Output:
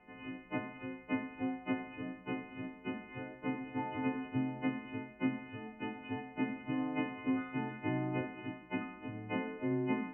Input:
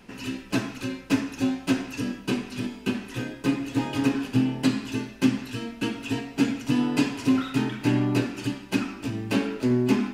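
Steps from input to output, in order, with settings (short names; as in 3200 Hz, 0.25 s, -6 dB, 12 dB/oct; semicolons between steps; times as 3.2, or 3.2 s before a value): frequency quantiser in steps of 3 st; rippled Chebyshev low-pass 2900 Hz, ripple 9 dB; tilt shelf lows +3.5 dB, about 1400 Hz; gain -7.5 dB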